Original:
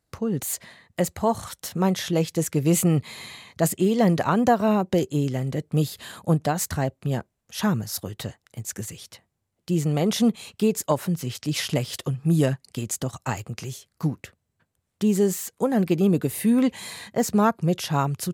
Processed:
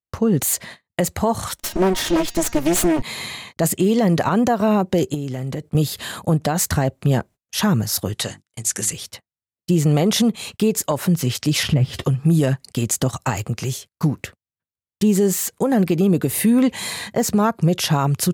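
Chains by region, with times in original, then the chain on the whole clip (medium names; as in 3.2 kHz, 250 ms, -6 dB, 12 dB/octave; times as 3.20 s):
1.55–3.02 s: comb filter that takes the minimum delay 3.2 ms + de-hum 234.6 Hz, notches 31 + loudspeaker Doppler distortion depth 0.19 ms
5.14–5.75 s: high-pass 60 Hz + compression 10:1, threshold -31 dBFS
8.14–8.93 s: steep low-pass 11 kHz + tilt EQ +2.5 dB/octave + hum notches 50/100/150/200/250/300/350 Hz
11.63–12.04 s: tone controls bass +13 dB, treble -12 dB + doubling 14 ms -12.5 dB + de-hum 396.3 Hz, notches 30
whole clip: gate -46 dBFS, range -34 dB; compression, threshold -21 dBFS; loudness maximiser +17.5 dB; trim -8 dB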